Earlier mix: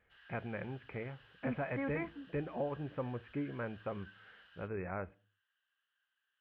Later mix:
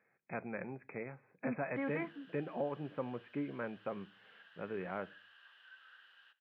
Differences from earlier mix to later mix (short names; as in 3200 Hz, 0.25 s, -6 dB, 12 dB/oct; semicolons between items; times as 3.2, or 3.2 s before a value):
background: entry +1.65 s; master: add HPF 150 Hz 24 dB/oct